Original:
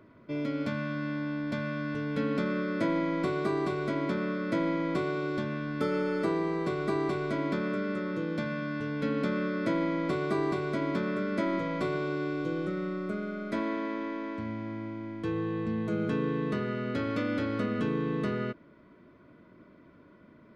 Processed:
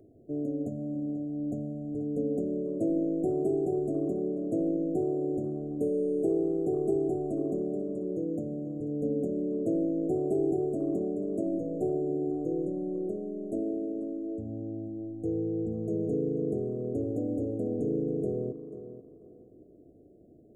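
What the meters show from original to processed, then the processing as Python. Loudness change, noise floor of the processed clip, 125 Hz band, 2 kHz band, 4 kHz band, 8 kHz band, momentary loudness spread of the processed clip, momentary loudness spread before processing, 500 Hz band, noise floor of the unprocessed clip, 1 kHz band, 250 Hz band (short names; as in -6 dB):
+0.5 dB, -55 dBFS, -2.5 dB, under -40 dB, under -35 dB, n/a, 7 LU, 5 LU, +2.0 dB, -56 dBFS, -11.0 dB, +0.5 dB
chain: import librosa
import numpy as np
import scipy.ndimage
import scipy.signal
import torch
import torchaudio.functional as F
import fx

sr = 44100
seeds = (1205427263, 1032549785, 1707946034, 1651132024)

p1 = fx.brickwall_bandstop(x, sr, low_hz=770.0, high_hz=6500.0)
p2 = p1 + 0.5 * np.pad(p1, (int(2.5 * sr / 1000.0), 0))[:len(p1)]
y = p2 + fx.echo_tape(p2, sr, ms=488, feedback_pct=29, wet_db=-11.0, lp_hz=4200.0, drive_db=15.0, wow_cents=14, dry=0)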